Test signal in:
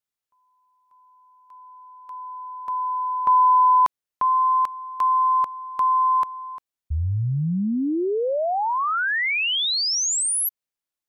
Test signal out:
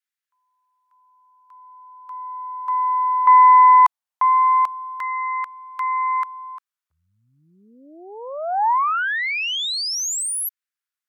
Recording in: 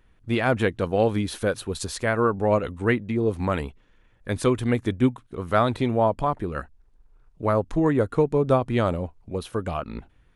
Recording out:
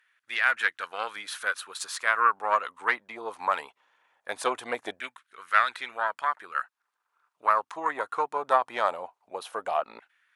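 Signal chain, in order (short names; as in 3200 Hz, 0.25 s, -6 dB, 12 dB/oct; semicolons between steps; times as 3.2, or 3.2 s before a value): added harmonics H 2 -10 dB, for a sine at -7 dBFS; LFO high-pass saw down 0.2 Hz 710–1700 Hz; gain -2 dB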